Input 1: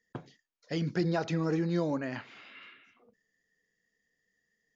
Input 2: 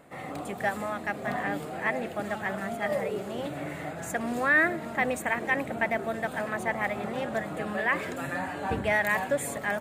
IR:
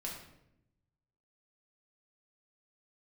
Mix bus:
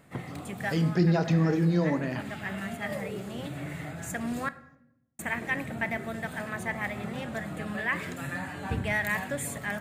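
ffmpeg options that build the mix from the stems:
-filter_complex "[0:a]volume=-0.5dB,asplit=3[a][b][c];[b]volume=-5dB[d];[1:a]equalizer=f=590:t=o:w=2.2:g=-8,volume=-1.5dB,asplit=3[e][f][g];[e]atrim=end=4.49,asetpts=PTS-STARTPTS,afade=t=out:st=4.486:d=0.004:c=hsin[h];[f]atrim=start=4.49:end=5.19,asetpts=PTS-STARTPTS,volume=0[i];[g]atrim=start=5.19,asetpts=PTS-STARTPTS,afade=t=in:d=0.004:c=hsin[j];[h][i][j]concat=n=3:v=0:a=1,asplit=2[k][l];[l]volume=-9.5dB[m];[c]apad=whole_len=432442[n];[k][n]sidechaincompress=threshold=-35dB:ratio=8:attack=9:release=802[o];[2:a]atrim=start_sample=2205[p];[d][m]amix=inputs=2:normalize=0[q];[q][p]afir=irnorm=-1:irlink=0[r];[a][o][r]amix=inputs=3:normalize=0,equalizer=f=110:w=0.95:g=6"

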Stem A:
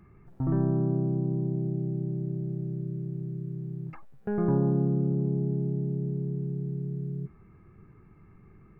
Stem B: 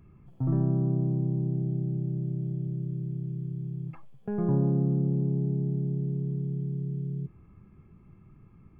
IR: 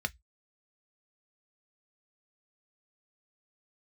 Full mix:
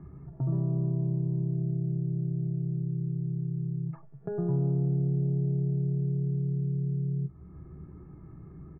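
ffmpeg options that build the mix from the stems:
-filter_complex "[0:a]lowpass=1.6k,equalizer=f=210:t=o:w=2.4:g=11.5,acompressor=threshold=-27dB:ratio=2.5,volume=-3.5dB,asplit=2[a][b];[b]volume=-6dB[c];[1:a]lowpass=1.3k,lowshelf=f=380:g=7.5,acontrast=71,volume=-1,adelay=0.8,volume=-9dB,asplit=2[d][e];[e]volume=-5dB[f];[2:a]atrim=start_sample=2205[g];[c][f]amix=inputs=2:normalize=0[h];[h][g]afir=irnorm=-1:irlink=0[i];[a][d][i]amix=inputs=3:normalize=0,acompressor=threshold=-43dB:ratio=1.5"

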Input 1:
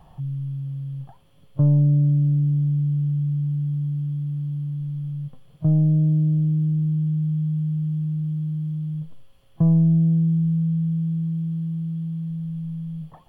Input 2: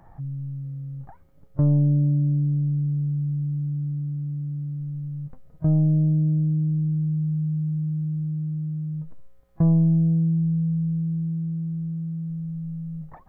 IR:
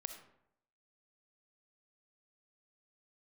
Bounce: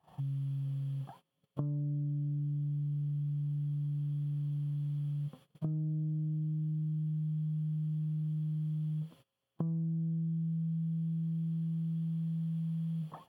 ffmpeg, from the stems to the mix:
-filter_complex "[0:a]highpass=f=280:p=1,acompressor=threshold=-30dB:ratio=6,volume=1dB[a];[1:a]equalizer=f=190:w=1.5:g=6,volume=-14dB[b];[a][b]amix=inputs=2:normalize=0,highpass=f=69:w=0.5412,highpass=f=69:w=1.3066,agate=range=-22dB:threshold=-53dB:ratio=16:detection=peak,acompressor=threshold=-33dB:ratio=6"

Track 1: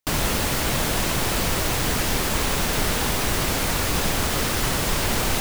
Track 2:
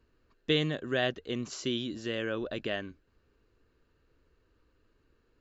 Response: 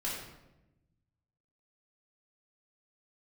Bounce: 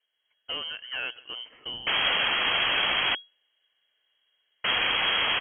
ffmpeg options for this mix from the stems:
-filter_complex "[0:a]adelay=1800,volume=2dB,asplit=3[a][b][c];[a]atrim=end=3.15,asetpts=PTS-STARTPTS,afade=t=out:st=3.146:d=0.004:c=hsin[d];[b]atrim=start=3.15:end=4.64,asetpts=PTS-STARTPTS,volume=0[e];[c]atrim=start=4.64,asetpts=PTS-STARTPTS,afade=t=in:d=0.004:c=hsin[f];[d][e][f]concat=n=3:v=0:a=1[g];[1:a]dynaudnorm=f=120:g=5:m=6.5dB,asoftclip=type=hard:threshold=-19dB,volume=-6.5dB,asplit=2[h][i];[i]volume=-22.5dB,aecho=0:1:144|288|432|576|720:1|0.38|0.144|0.0549|0.0209[j];[g][h][j]amix=inputs=3:normalize=0,lowshelf=f=440:g=-6,lowpass=f=2.8k:t=q:w=0.5098,lowpass=f=2.8k:t=q:w=0.6013,lowpass=f=2.8k:t=q:w=0.9,lowpass=f=2.8k:t=q:w=2.563,afreqshift=-3300"

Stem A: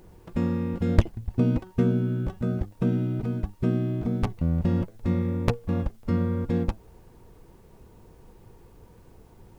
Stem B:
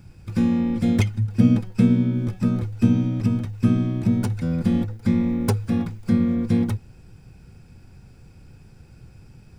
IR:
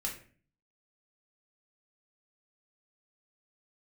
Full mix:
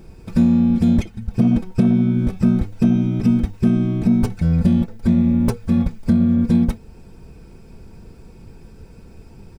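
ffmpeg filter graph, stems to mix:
-filter_complex "[0:a]tiltshelf=f=870:g=7,volume=1dB[a];[1:a]aecho=1:1:4.5:0.83,asoftclip=type=tanh:threshold=-7.5dB,volume=1dB[b];[a][b]amix=inputs=2:normalize=0,alimiter=limit=-6.5dB:level=0:latency=1:release=432"

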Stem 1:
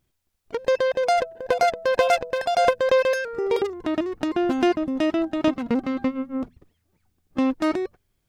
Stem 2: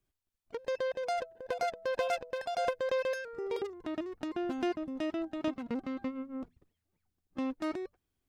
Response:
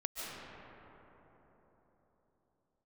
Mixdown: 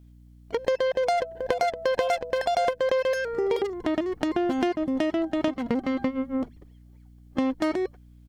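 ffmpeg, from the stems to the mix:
-filter_complex "[0:a]aeval=exprs='val(0)+0.00282*(sin(2*PI*60*n/s)+sin(2*PI*2*60*n/s)/2+sin(2*PI*3*60*n/s)/3+sin(2*PI*4*60*n/s)/4+sin(2*PI*5*60*n/s)/5)':c=same,volume=1.5dB[a];[1:a]equalizer=f=3.4k:w=1.4:g=10.5,volume=-1,adelay=0.8,volume=-0.5dB[b];[a][b]amix=inputs=2:normalize=0,acompressor=threshold=-22dB:ratio=5"

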